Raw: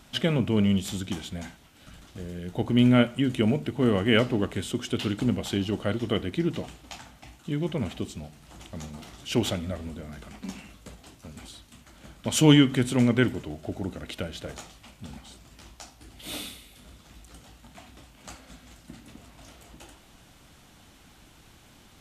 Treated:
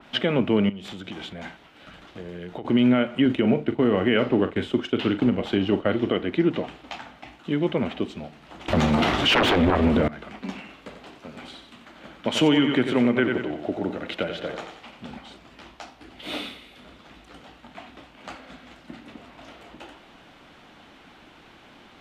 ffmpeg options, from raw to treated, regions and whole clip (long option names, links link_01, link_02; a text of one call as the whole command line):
ffmpeg -i in.wav -filter_complex "[0:a]asettb=1/sr,asplit=3[link_01][link_02][link_03];[link_01]atrim=end=0.694[link_04];[link_02]atrim=start=0.69:end=2.65,asetpts=PTS-STARTPTS,afade=type=in:duration=0.004:curve=qsin,afade=type=out:start_time=1.956:duration=0.004:curve=qsin,acompressor=threshold=-34dB:ratio=12:attack=3.2:release=140:knee=1:detection=peak,equalizer=frequency=250:width=5.2:gain=-4.5[link_05];[link_03]atrim=start=2.646[link_06];[link_04][link_05]acrossfade=duration=0.004:curve1=hsin:curve2=qsin[link_07];[link_07][link_06]acrossfade=duration=0.004:curve1=qsin:curve2=hsin,asettb=1/sr,asplit=3[link_08][link_09][link_10];[link_08]atrim=end=3.254[link_11];[link_09]atrim=start=3.25:end=6.12,asetpts=PTS-STARTPTS,afade=type=in:duration=0.004:curve=qsin,afade=type=out:start_time=2.866:duration=0.004:curve=qsin,agate=range=-33dB:threshold=-33dB:ratio=3:release=100:detection=peak,lowshelf=frequency=140:gain=5.5,asplit=2[link_12][link_13];[link_13]adelay=42,volume=-12dB[link_14];[link_12][link_14]amix=inputs=2:normalize=0,atrim=end_sample=126567[link_15];[link_10]atrim=start=6.116[link_16];[link_11][link_15]acrossfade=duration=0.004:curve1=hsin:curve2=qsin[link_17];[link_17][link_16]acrossfade=duration=0.004:curve1=qsin:curve2=hsin,asettb=1/sr,asplit=3[link_18][link_19][link_20];[link_18]atrim=end=8.684[link_21];[link_19]atrim=start=8.68:end=10.08,asetpts=PTS-STARTPTS,afade=type=in:duration=0.004:curve=qsin,afade=type=out:start_time=1.396:duration=0.004:curve=qsin,equalizer=frequency=92:width=2.1:gain=6.5,aeval=exprs='0.282*sin(PI/2*7.08*val(0)/0.282)':channel_layout=same[link_22];[link_20]atrim=start=10.076[link_23];[link_21][link_22]acrossfade=duration=0.004:curve1=hsin:curve2=qsin[link_24];[link_24][link_23]acrossfade=duration=0.004:curve1=qsin:curve2=hsin,asettb=1/sr,asplit=3[link_25][link_26][link_27];[link_25]atrim=end=10.604[link_28];[link_26]atrim=start=10.6:end=15.07,asetpts=PTS-STARTPTS,afade=type=in:duration=0.004:curve=qsin,afade=type=out:start_time=4.466:duration=0.004:curve=qsin,equalizer=frequency=62:width=0.79:gain=-5,aecho=1:1:91|182|273|364:0.398|0.143|0.0516|0.0186,atrim=end_sample=197127[link_29];[link_27]atrim=start=15.066[link_30];[link_28][link_29]acrossfade=duration=0.004:curve1=hsin:curve2=qsin[link_31];[link_31][link_30]acrossfade=duration=0.004:curve1=qsin:curve2=hsin,acrossover=split=210 3800:gain=0.2 1 0.0891[link_32][link_33][link_34];[link_32][link_33][link_34]amix=inputs=3:normalize=0,alimiter=limit=-18.5dB:level=0:latency=1:release=143,adynamicequalizer=threshold=0.00355:dfrequency=3400:dqfactor=0.7:tfrequency=3400:tqfactor=0.7:attack=5:release=100:ratio=0.375:range=2.5:mode=cutabove:tftype=highshelf,volume=8dB" out.wav